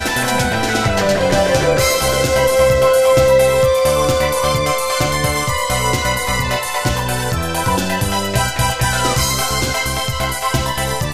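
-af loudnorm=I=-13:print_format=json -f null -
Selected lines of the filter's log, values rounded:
"input_i" : "-15.8",
"input_tp" : "-2.4",
"input_lra" : "3.7",
"input_thresh" : "-25.8",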